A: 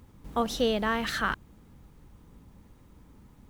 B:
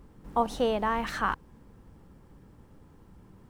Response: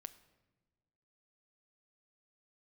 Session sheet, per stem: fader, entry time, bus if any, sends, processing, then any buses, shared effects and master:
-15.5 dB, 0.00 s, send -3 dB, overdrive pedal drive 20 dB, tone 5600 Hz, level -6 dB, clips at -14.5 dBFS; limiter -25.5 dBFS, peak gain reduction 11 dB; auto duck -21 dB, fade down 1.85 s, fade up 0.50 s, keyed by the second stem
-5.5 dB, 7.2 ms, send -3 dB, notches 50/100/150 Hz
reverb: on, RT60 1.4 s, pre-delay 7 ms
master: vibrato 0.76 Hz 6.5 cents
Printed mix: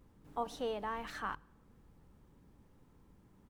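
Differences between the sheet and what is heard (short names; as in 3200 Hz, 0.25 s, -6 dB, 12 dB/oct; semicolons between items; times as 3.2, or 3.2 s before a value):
stem A: missing overdrive pedal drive 20 dB, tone 5600 Hz, level -6 dB, clips at -14.5 dBFS; stem B -5.5 dB -> -14.0 dB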